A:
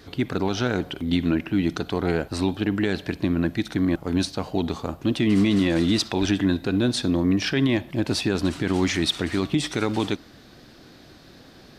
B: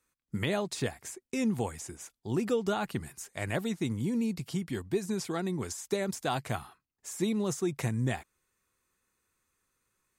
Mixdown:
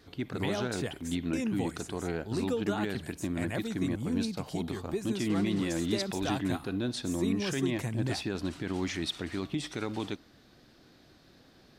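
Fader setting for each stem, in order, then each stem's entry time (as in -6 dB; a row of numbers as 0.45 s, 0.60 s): -10.5 dB, -3.5 dB; 0.00 s, 0.00 s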